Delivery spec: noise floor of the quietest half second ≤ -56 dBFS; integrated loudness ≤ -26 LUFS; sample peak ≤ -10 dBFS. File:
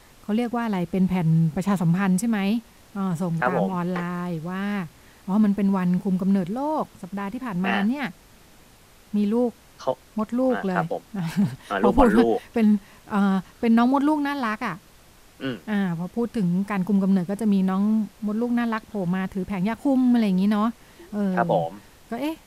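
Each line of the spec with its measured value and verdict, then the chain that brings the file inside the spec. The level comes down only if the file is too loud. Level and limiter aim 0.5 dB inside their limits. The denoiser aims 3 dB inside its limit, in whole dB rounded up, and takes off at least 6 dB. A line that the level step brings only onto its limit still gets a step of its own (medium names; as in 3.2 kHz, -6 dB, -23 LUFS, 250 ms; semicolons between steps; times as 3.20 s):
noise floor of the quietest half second -52 dBFS: fail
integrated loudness -24.0 LUFS: fail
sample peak -6.0 dBFS: fail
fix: noise reduction 6 dB, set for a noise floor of -52 dBFS; trim -2.5 dB; peak limiter -10.5 dBFS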